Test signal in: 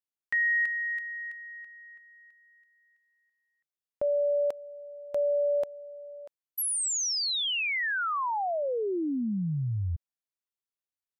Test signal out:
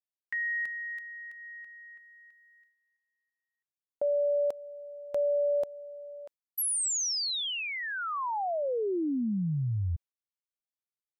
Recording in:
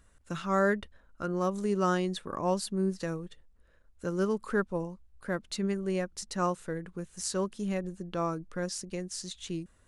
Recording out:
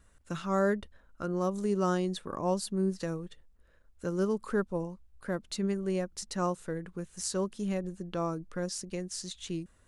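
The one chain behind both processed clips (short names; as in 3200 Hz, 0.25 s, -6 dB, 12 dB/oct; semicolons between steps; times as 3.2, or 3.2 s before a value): gate with hold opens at -58 dBFS, closes at -60 dBFS, hold 24 ms, range -11 dB; dynamic EQ 2000 Hz, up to -6 dB, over -43 dBFS, Q 0.78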